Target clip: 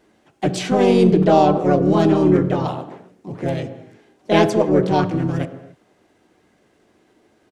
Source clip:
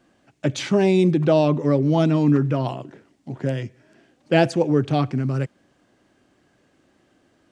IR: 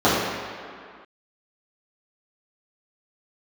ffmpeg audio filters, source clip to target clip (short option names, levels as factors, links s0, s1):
-filter_complex "[0:a]asplit=3[s0][s1][s2];[s1]asetrate=33038,aresample=44100,atempo=1.33484,volume=0.178[s3];[s2]asetrate=55563,aresample=44100,atempo=0.793701,volume=0.891[s4];[s0][s3][s4]amix=inputs=3:normalize=0,aeval=exprs='0.944*(cos(1*acos(clip(val(0)/0.944,-1,1)))-cos(1*PI/2))+0.0133*(cos(8*acos(clip(val(0)/0.944,-1,1)))-cos(8*PI/2))':c=same,asplit=2[s5][s6];[1:a]atrim=start_sample=2205,afade=t=out:st=0.35:d=0.01,atrim=end_sample=15876[s7];[s6][s7]afir=irnorm=-1:irlink=0,volume=0.0251[s8];[s5][s8]amix=inputs=2:normalize=0,volume=0.891"